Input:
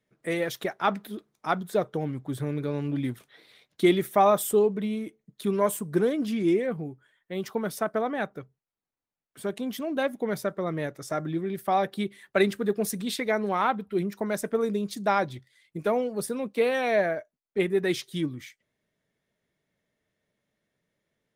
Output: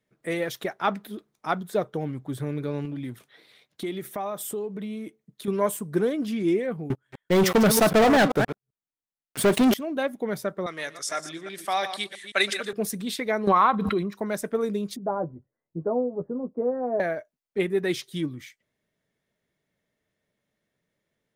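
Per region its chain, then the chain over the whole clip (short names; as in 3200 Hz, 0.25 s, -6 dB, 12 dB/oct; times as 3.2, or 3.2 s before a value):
2.85–5.48 HPF 63 Hz + compressor 3:1, threshold -31 dBFS
6.9–9.74 reverse delay 0.129 s, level -11.5 dB + sample leveller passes 5
10.66–12.73 reverse delay 0.166 s, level -10.5 dB + weighting filter ITU-R 468 + echo 0.12 s -18.5 dB
13.47–14.15 high shelf 6500 Hz -9.5 dB + small resonant body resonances 1100/3900 Hz, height 15 dB, ringing for 30 ms + backwards sustainer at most 22 dB/s
14.96–17 Bessel low-pass 660 Hz, order 8 + doubler 12 ms -5.5 dB
whole clip: dry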